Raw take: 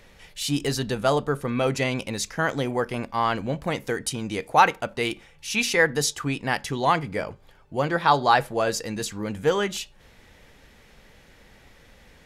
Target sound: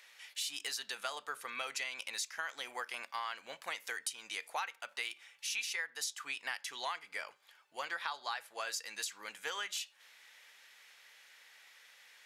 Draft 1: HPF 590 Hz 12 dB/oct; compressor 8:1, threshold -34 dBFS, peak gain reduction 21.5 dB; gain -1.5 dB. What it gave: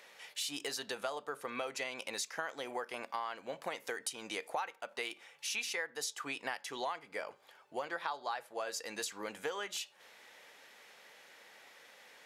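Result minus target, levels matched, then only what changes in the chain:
500 Hz band +8.5 dB
change: HPF 1500 Hz 12 dB/oct

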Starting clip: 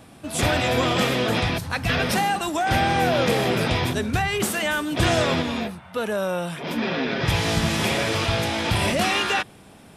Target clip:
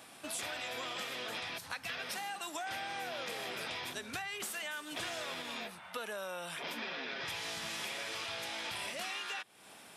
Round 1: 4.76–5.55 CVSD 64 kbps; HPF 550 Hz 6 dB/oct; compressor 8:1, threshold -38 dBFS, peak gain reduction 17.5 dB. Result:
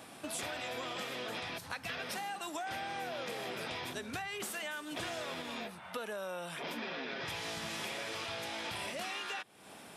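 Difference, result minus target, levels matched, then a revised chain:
500 Hz band +3.0 dB
4.76–5.55 CVSD 64 kbps; HPF 1300 Hz 6 dB/oct; compressor 8:1, threshold -38 dBFS, peak gain reduction 16.5 dB

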